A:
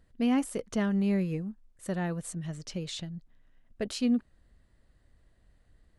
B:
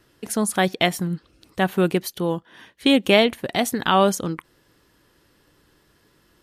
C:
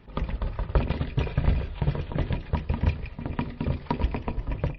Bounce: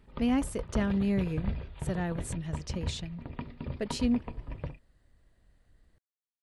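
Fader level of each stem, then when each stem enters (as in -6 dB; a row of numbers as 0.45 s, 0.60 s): -1.0 dB, mute, -10.0 dB; 0.00 s, mute, 0.00 s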